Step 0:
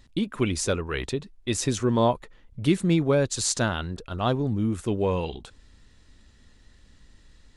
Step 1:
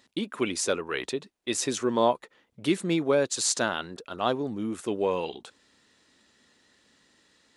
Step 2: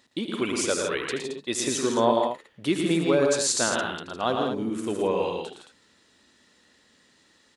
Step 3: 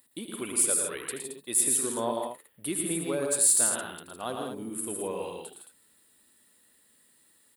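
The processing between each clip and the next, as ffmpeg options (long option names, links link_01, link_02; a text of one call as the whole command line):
ffmpeg -i in.wav -af "highpass=290" out.wav
ffmpeg -i in.wav -af "aecho=1:1:78|113|153|165|220:0.282|0.531|0.316|0.447|0.355" out.wav
ffmpeg -i in.wav -af "aexciter=amount=15.1:drive=9:freq=9100,volume=-9dB" out.wav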